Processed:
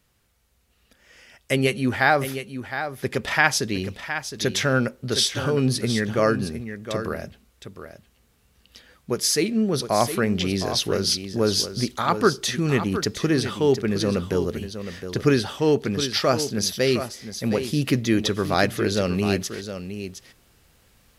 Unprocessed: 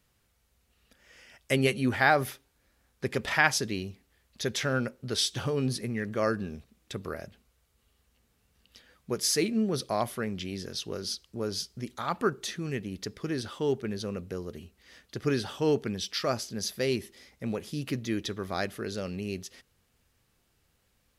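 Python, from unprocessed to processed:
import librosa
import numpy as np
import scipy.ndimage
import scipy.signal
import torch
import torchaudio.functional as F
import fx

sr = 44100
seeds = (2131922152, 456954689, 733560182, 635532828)

y = fx.rider(x, sr, range_db=4, speed_s=0.5)
y = y + 10.0 ** (-10.0 / 20.0) * np.pad(y, (int(713 * sr / 1000.0), 0))[:len(y)]
y = y * 10.0 ** (8.0 / 20.0)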